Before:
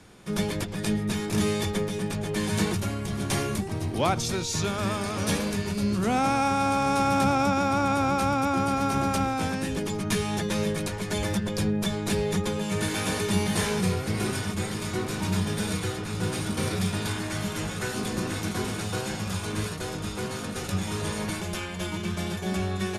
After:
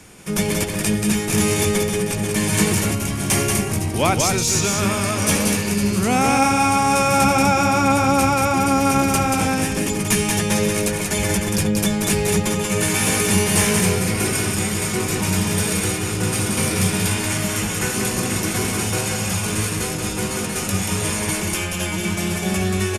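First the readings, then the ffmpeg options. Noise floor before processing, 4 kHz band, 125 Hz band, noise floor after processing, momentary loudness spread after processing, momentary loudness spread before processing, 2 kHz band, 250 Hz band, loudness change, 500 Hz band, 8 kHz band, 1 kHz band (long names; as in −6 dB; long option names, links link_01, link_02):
−34 dBFS, +8.0 dB, +7.0 dB, −25 dBFS, 6 LU, 7 LU, +9.5 dB, +7.0 dB, +8.5 dB, +7.0 dB, +14.5 dB, +7.0 dB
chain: -af "aexciter=amount=1.1:drive=7.4:freq=2100,aecho=1:1:183:0.631,volume=5.5dB"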